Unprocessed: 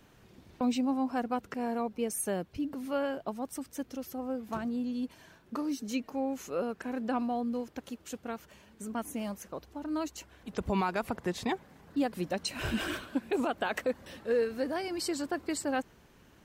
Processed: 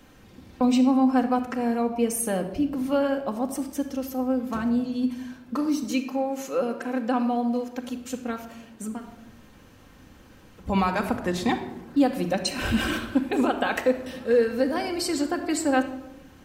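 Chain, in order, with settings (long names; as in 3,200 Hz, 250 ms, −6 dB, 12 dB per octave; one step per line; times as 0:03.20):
0:05.84–0:07.85: high-pass filter 270 Hz 6 dB per octave
0:08.95–0:10.66: fill with room tone, crossfade 0.16 s
convolution reverb RT60 0.90 s, pre-delay 4 ms, DRR 3.5 dB
level +5.5 dB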